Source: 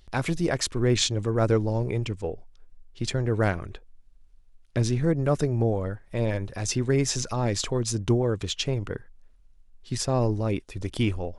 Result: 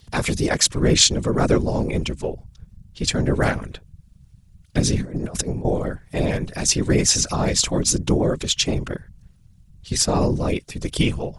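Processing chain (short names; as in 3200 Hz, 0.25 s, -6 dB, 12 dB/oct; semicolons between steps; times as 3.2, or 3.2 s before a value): high shelf 3300 Hz +9.5 dB; 5–5.65 negative-ratio compressor -29 dBFS, ratio -0.5; whisperiser; gain +4 dB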